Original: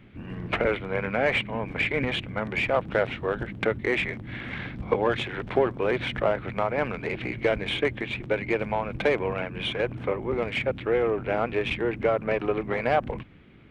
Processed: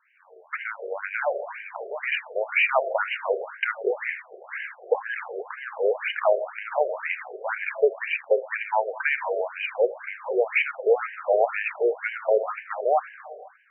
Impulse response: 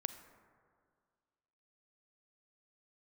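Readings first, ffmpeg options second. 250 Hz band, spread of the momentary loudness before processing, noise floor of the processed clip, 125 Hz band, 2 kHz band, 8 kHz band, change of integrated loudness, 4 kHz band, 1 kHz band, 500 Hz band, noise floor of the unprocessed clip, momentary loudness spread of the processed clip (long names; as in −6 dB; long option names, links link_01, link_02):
below −10 dB, 6 LU, −52 dBFS, below −40 dB, +2.0 dB, can't be measured, +1.0 dB, −6.0 dB, +2.0 dB, +1.5 dB, −41 dBFS, 12 LU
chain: -filter_complex "[0:a]dynaudnorm=framelen=130:gausssize=17:maxgain=11dB,acrossover=split=170 5100:gain=0.1 1 0.158[link_01][link_02][link_03];[link_01][link_02][link_03]amix=inputs=3:normalize=0[link_04];[1:a]atrim=start_sample=2205[link_05];[link_04][link_05]afir=irnorm=-1:irlink=0,afftfilt=real='re*between(b*sr/1024,510*pow(2200/510,0.5+0.5*sin(2*PI*2*pts/sr))/1.41,510*pow(2200/510,0.5+0.5*sin(2*PI*2*pts/sr))*1.41)':imag='im*between(b*sr/1024,510*pow(2200/510,0.5+0.5*sin(2*PI*2*pts/sr))/1.41,510*pow(2200/510,0.5+0.5*sin(2*PI*2*pts/sr))*1.41)':win_size=1024:overlap=0.75"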